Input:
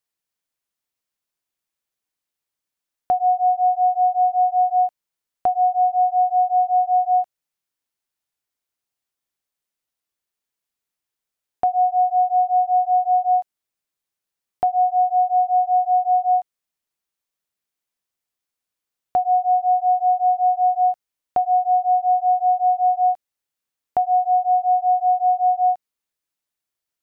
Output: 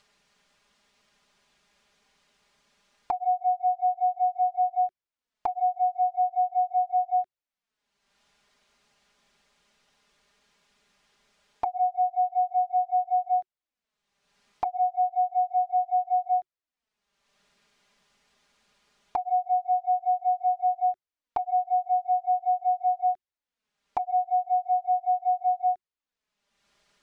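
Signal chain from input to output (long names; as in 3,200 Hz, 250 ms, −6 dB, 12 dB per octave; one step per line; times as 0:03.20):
upward compression, threshold −31 dBFS
flanger swept by the level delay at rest 5.1 ms, full sweep at −13.5 dBFS
high-frequency loss of the air 110 metres
notch filter 370 Hz, Q 12
level −3 dB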